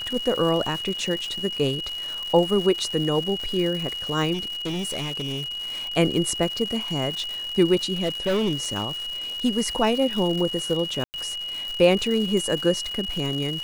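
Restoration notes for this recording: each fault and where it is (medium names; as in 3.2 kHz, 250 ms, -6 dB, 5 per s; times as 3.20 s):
crackle 260 per s -29 dBFS
whine 2.9 kHz -29 dBFS
4.33–5.65 s: clipped -25 dBFS
7.96–8.87 s: clipped -19 dBFS
11.04–11.14 s: dropout 99 ms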